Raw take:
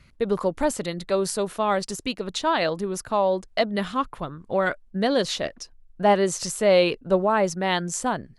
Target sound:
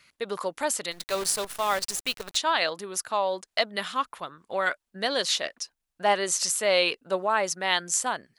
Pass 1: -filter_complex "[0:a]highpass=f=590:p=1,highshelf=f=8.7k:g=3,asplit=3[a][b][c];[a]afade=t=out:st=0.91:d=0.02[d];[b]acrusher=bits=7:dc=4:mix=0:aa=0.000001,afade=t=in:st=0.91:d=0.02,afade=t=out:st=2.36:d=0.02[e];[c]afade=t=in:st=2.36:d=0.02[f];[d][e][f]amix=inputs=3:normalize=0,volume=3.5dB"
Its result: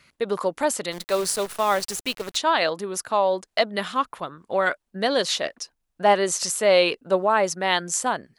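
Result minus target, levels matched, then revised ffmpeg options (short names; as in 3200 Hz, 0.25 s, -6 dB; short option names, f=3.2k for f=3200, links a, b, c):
500 Hz band +3.0 dB
-filter_complex "[0:a]highpass=f=1.6k:p=1,highshelf=f=8.7k:g=3,asplit=3[a][b][c];[a]afade=t=out:st=0.91:d=0.02[d];[b]acrusher=bits=7:dc=4:mix=0:aa=0.000001,afade=t=in:st=0.91:d=0.02,afade=t=out:st=2.36:d=0.02[e];[c]afade=t=in:st=2.36:d=0.02[f];[d][e][f]amix=inputs=3:normalize=0,volume=3.5dB"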